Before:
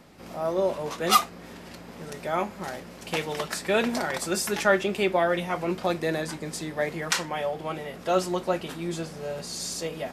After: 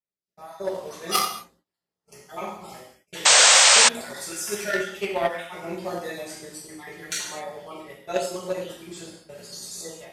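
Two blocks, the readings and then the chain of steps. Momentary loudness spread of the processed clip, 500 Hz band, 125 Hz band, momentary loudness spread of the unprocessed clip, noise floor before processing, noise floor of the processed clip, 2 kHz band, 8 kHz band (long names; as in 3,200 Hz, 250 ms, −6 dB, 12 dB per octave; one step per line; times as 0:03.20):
24 LU, −3.5 dB, −9.0 dB, 14 LU, −44 dBFS, below −85 dBFS, +5.5 dB, +14.0 dB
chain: time-frequency cells dropped at random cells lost 36%
dynamic equaliser 720 Hz, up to +3 dB, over −34 dBFS, Q 1.5
noise gate −37 dBFS, range −38 dB
automatic gain control gain up to 4 dB
reverb whose tail is shaped and stops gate 270 ms falling, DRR −7 dB
harmonic generator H 3 −15 dB, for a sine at 2 dBFS
high-shelf EQ 3,600 Hz +9.5 dB
sound drawn into the spectrogram noise, 0:03.25–0:03.89, 490–8,800 Hz −3 dBFS
level −11 dB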